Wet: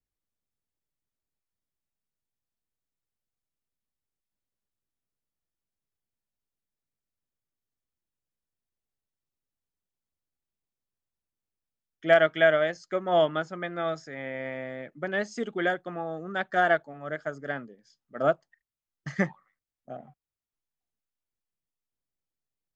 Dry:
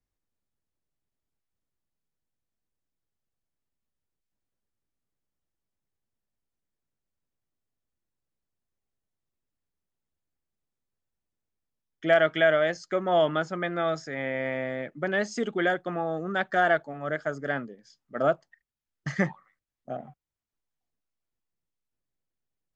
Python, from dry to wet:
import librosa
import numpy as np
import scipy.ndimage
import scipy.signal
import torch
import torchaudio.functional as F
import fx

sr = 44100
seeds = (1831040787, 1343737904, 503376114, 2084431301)

y = fx.upward_expand(x, sr, threshold_db=-31.0, expansion=1.5)
y = y * librosa.db_to_amplitude(2.0)